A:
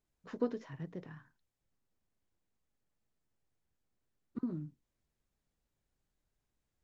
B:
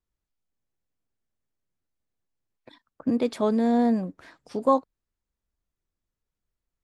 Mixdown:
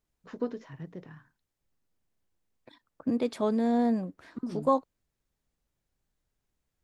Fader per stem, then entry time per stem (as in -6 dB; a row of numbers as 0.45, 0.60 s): +1.5, -4.0 dB; 0.00, 0.00 s